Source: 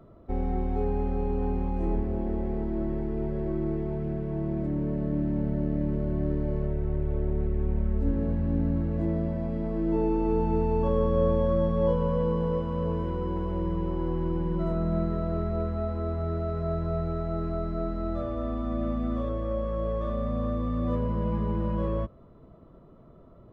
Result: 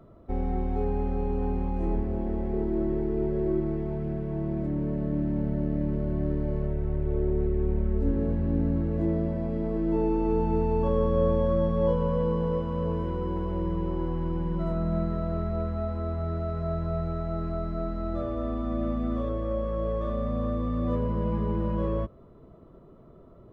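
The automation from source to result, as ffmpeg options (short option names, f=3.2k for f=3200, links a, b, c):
-af "asetnsamples=n=441:p=0,asendcmd='2.53 equalizer g 7.5;3.6 equalizer g -0.5;7.06 equalizer g 7;9.77 equalizer g 0.5;14.05 equalizer g -5.5;18.14 equalizer g 4.5',equalizer=f=390:t=o:w=0.41:g=-0.5"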